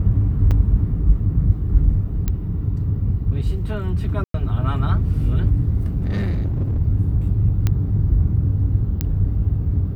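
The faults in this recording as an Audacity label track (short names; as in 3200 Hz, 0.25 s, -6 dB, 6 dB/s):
0.510000	0.520000	gap 6 ms
2.280000	2.280000	pop -9 dBFS
4.240000	4.340000	gap 0.103 s
6.000000	6.800000	clipped -17.5 dBFS
7.670000	7.670000	pop -8 dBFS
9.010000	9.010000	pop -8 dBFS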